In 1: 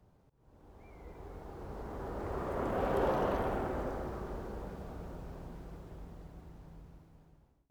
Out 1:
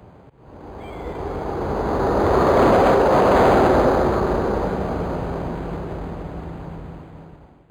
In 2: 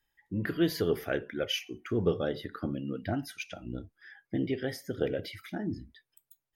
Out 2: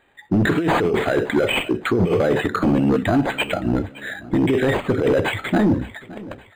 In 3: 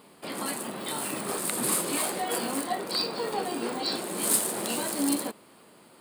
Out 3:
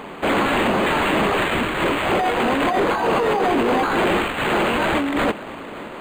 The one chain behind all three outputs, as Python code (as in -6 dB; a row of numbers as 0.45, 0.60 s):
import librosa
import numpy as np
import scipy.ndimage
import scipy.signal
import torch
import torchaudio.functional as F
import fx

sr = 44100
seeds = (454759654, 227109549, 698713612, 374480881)

y = scipy.signal.sosfilt(scipy.signal.butter(2, 51.0, 'highpass', fs=sr, output='sos'), x)
y = fx.low_shelf(y, sr, hz=220.0, db=-6.0)
y = fx.over_compress(y, sr, threshold_db=-35.0, ratio=-1.0)
y = np.clip(y, -10.0 ** (-32.5 / 20.0), 10.0 ** (-32.5 / 20.0))
y = fx.echo_feedback(y, sr, ms=566, feedback_pct=45, wet_db=-19)
y = np.interp(np.arange(len(y)), np.arange(len(y))[::8], y[::8])
y = y * 10.0 ** (-20 / 20.0) / np.sqrt(np.mean(np.square(y)))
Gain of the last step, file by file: +23.0, +20.5, +18.0 dB